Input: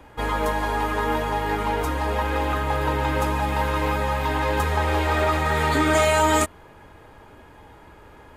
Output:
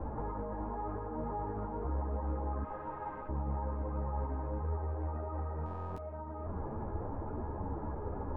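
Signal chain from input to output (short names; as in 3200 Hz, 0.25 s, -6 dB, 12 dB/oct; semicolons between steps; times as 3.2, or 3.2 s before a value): 2.63–3.29 differentiator; negative-ratio compressor -34 dBFS, ratio -1; tube stage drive 32 dB, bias 0.5; LPF 1100 Hz 24 dB/oct; low shelf 310 Hz +6.5 dB; stuck buffer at 5.64, samples 1024, times 13; ensemble effect; gain +1 dB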